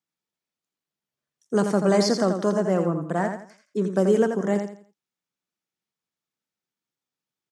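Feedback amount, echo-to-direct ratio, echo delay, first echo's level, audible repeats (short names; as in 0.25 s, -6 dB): 30%, -6.5 dB, 84 ms, -7.0 dB, 3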